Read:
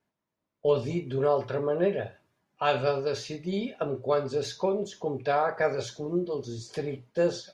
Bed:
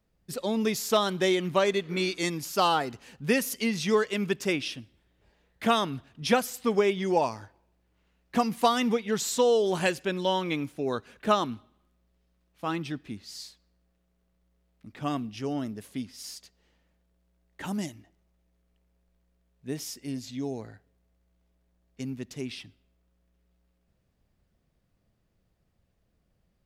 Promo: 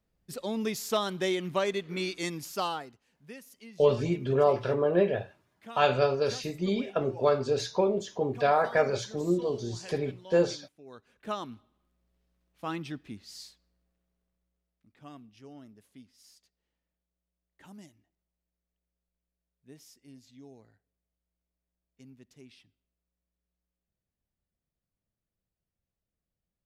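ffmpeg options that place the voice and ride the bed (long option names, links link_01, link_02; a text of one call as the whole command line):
ffmpeg -i stem1.wav -i stem2.wav -filter_complex "[0:a]adelay=3150,volume=1.5dB[link_01];[1:a]volume=13dB,afade=type=out:start_time=2.44:duration=0.56:silence=0.141254,afade=type=in:start_time=10.84:duration=1.31:silence=0.133352,afade=type=out:start_time=13.52:duration=1.35:silence=0.211349[link_02];[link_01][link_02]amix=inputs=2:normalize=0" out.wav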